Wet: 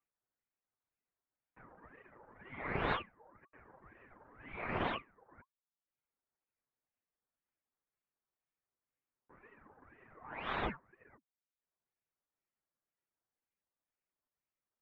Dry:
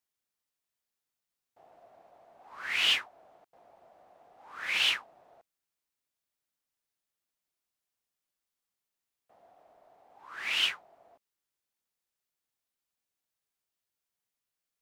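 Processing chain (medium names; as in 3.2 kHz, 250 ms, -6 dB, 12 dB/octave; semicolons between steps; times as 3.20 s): comb filter that takes the minimum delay 7.8 ms; reverb removal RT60 0.71 s; low-pass 1.5 kHz 24 dB/octave; ring modulator with a swept carrier 660 Hz, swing 80%, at 2 Hz; trim +6.5 dB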